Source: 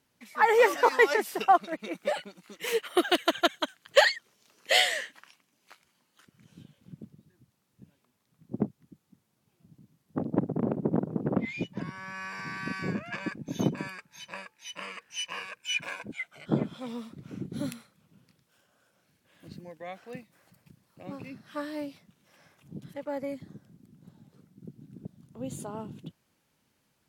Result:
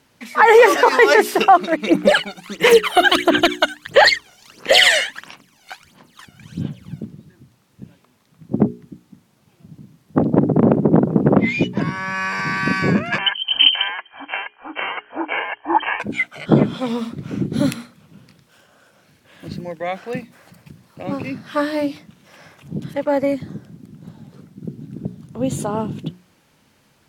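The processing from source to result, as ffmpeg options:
-filter_complex "[0:a]asplit=3[a][b][c];[a]afade=t=out:st=1.86:d=0.02[d];[b]aphaser=in_gain=1:out_gain=1:delay=1.4:decay=0.75:speed=1.5:type=sinusoidal,afade=t=in:st=1.86:d=0.02,afade=t=out:st=7:d=0.02[e];[c]afade=t=in:st=7:d=0.02[f];[d][e][f]amix=inputs=3:normalize=0,asettb=1/sr,asplit=3[g][h][i];[g]atrim=end=13.184[j];[h]atrim=start=13.18:end=16,asetpts=PTS-STARTPTS,afade=t=in:d=0.004:c=qsin,afade=t=out:st=2.816:d=0.004:c=qsin,lowpass=f=2.8k:t=q:w=0.5098,lowpass=f=2.8k:t=q:w=0.6013,lowpass=f=2.8k:t=q:w=0.9,lowpass=f=2.8k:t=q:w=2.563,afreqshift=-3300[k];[i]atrim=start=15.996[l];[j][k]acrossfade=d=0.004:c1=hsin:c2=qsin[m];[m][l]acrossfade=d=0.004:c1=qsin:c2=hsin,highshelf=f=7.7k:g=-7,bandreject=f=60:t=h:w=6,bandreject=f=120:t=h:w=6,bandreject=f=180:t=h:w=6,bandreject=f=240:t=h:w=6,bandreject=f=300:t=h:w=6,bandreject=f=360:t=h:w=6,bandreject=f=420:t=h:w=6,alimiter=level_in=17dB:limit=-1dB:release=50:level=0:latency=1,volume=-1dB"

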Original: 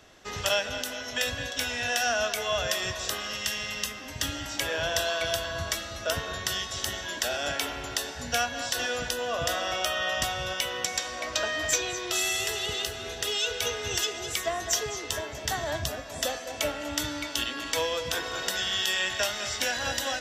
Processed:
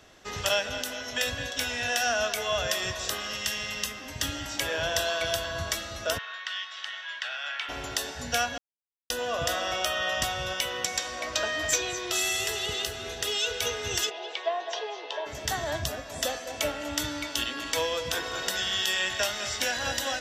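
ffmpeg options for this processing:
-filter_complex "[0:a]asplit=3[a][b][c];[a]afade=t=out:st=6.17:d=0.02[d];[b]asuperpass=centerf=2000:order=4:qfactor=0.89,afade=t=in:st=6.17:d=0.02,afade=t=out:st=7.68:d=0.02[e];[c]afade=t=in:st=7.68:d=0.02[f];[d][e][f]amix=inputs=3:normalize=0,asplit=3[g][h][i];[g]afade=t=out:st=14.09:d=0.02[j];[h]highpass=f=420:w=0.5412,highpass=f=420:w=1.3066,equalizer=f=550:t=q:w=4:g=3,equalizer=f=880:t=q:w=4:g=8,equalizer=f=1.3k:t=q:w=4:g=-8,equalizer=f=2k:t=q:w=4:g=-6,lowpass=f=3.8k:w=0.5412,lowpass=f=3.8k:w=1.3066,afade=t=in:st=14.09:d=0.02,afade=t=out:st=15.25:d=0.02[k];[i]afade=t=in:st=15.25:d=0.02[l];[j][k][l]amix=inputs=3:normalize=0,asplit=3[m][n][o];[m]atrim=end=8.58,asetpts=PTS-STARTPTS,afade=t=out:st=8.576:d=0.004:c=hsin[p];[n]atrim=start=8.58:end=9.1,asetpts=PTS-STARTPTS,volume=0[q];[o]atrim=start=9.1,asetpts=PTS-STARTPTS,afade=t=in:d=0.004:c=hsin[r];[p][q][r]concat=n=3:v=0:a=1"

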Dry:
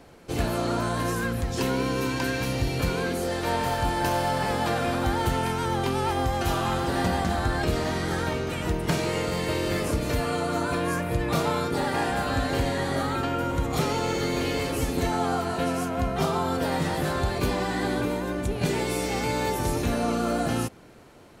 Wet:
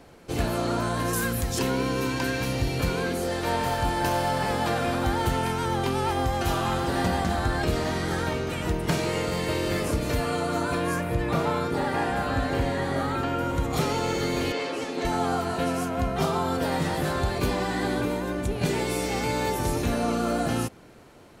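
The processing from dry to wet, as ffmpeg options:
-filter_complex "[0:a]asettb=1/sr,asplit=3[a][b][c];[a]atrim=end=1.134[d];[b]atrim=start=1.13:end=1.59,asetpts=PTS-STARTPTS,afade=t=in:d=0.004:c=qsin,afade=t=out:st=0.456:d=0.004:c=qsin,aemphasis=mode=production:type=50kf[e];[c]atrim=start=1.586[f];[d][e]acrossfade=d=0.004:c1=hsin:c2=qsin[g];[g][f]acrossfade=d=0.004:c1=qsin:c2=hsin,asettb=1/sr,asplit=3[h][i][j];[h]atrim=end=11.054[k];[i]atrim=start=11.05:end=13.47,asetpts=PTS-STARTPTS,afade=t=in:d=0.004:c=qsin,afade=t=out:st=2.416:d=0.004:c=qsin,acrossover=split=2800[l][m];[m]acompressor=threshold=-43dB:ratio=4:attack=1:release=60[n];[l][n]amix=inputs=2:normalize=0[o];[j]atrim=start=13.466[p];[k][o]acrossfade=d=0.004:c1=hsin:c2=qsin[q];[q][p]acrossfade=d=0.004:c1=qsin:c2=hsin,asettb=1/sr,asplit=3[r][s][t];[r]atrim=end=14.524[u];[s]atrim=start=14.52:end=15.05,asetpts=PTS-STARTPTS,afade=t=in:d=0.004:c=qsin,afade=t=out:st=0.526:d=0.004:c=qsin,highpass=310,lowpass=5.3k[v];[t]atrim=start=15.046[w];[u][v]acrossfade=d=0.004:c1=hsin:c2=qsin[x];[x][w]acrossfade=d=0.004:c1=qsin:c2=hsin"

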